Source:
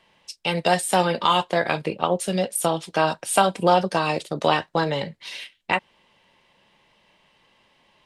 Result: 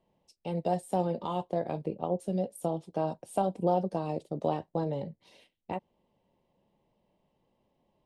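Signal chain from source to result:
drawn EQ curve 260 Hz 0 dB, 750 Hz −4 dB, 1,500 Hz −22 dB, 12,000 Hz −16 dB
level −5.5 dB

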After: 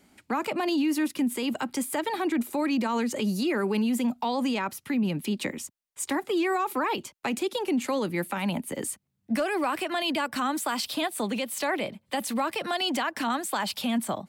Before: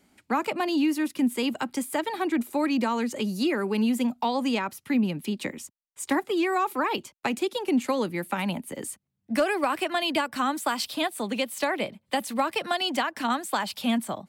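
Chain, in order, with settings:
brickwall limiter −22.5 dBFS, peak gain reduction 7.5 dB
level +3 dB

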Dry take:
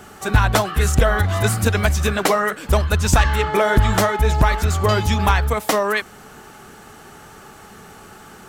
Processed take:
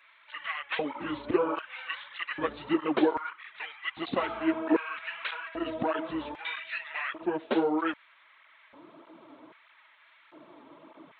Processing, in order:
downsampling to 11,025 Hz
change of speed 0.758×
auto-filter high-pass square 0.63 Hz 300–1,900 Hz
through-zero flanger with one copy inverted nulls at 1.6 Hz, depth 6.6 ms
level −9 dB

